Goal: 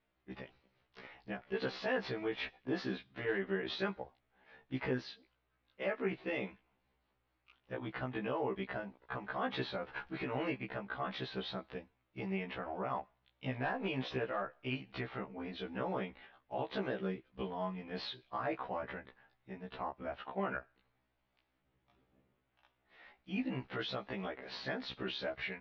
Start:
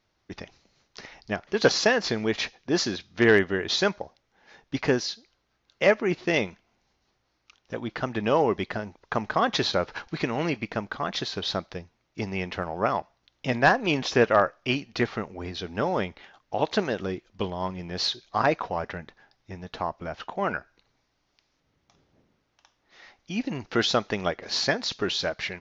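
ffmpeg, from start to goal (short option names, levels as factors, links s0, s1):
-af "alimiter=limit=0.119:level=0:latency=1:release=110,lowpass=f=3300:w=0.5412,lowpass=f=3300:w=1.3066,afftfilt=real='re*1.73*eq(mod(b,3),0)':imag='im*1.73*eq(mod(b,3),0)':win_size=2048:overlap=0.75,volume=0.562"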